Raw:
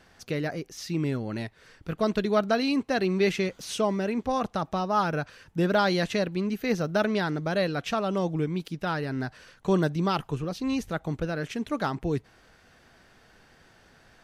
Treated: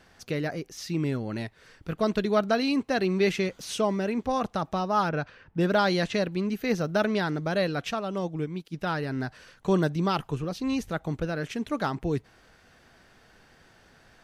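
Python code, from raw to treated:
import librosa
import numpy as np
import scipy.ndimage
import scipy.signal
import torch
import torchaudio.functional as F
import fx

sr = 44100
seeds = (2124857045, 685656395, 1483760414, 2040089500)

y = fx.env_lowpass(x, sr, base_hz=1600.0, full_db=-20.0, at=(5.09, 6.14))
y = fx.upward_expand(y, sr, threshold_db=-43.0, expansion=1.5, at=(7.9, 8.72), fade=0.02)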